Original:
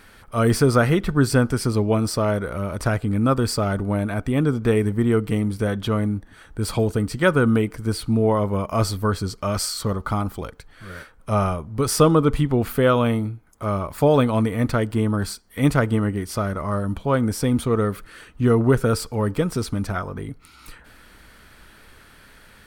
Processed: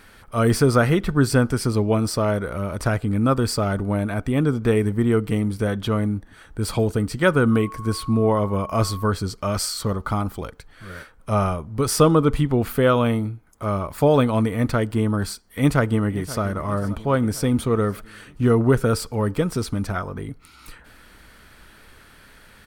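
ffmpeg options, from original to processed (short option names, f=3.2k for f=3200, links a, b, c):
-filter_complex "[0:a]asettb=1/sr,asplit=3[a][b][c];[a]atrim=end=7.514[d];[b]atrim=start=7.51:end=9.1,asetpts=PTS-STARTPTS,afade=t=in:d=0.004:c=qsin,afade=t=out:st=1.586:d=0.004:c=qsin,aeval=exprs='val(0)+0.0178*sin(2*PI*1100*n/s)':c=same[e];[c]atrim=start=9.096[f];[d][e]acrossfade=d=0.004:c1=hsin:c2=qsin[g];[g][f]acrossfade=d=0.004:c1=qsin:c2=hsin,asplit=2[h][i];[i]afade=t=in:st=15.46:d=0.01,afade=t=out:st=16.42:d=0.01,aecho=0:1:530|1060|1590|2120|2650|3180:0.158489|0.0950936|0.0570562|0.0342337|0.0205402|0.0123241[j];[h][j]amix=inputs=2:normalize=0"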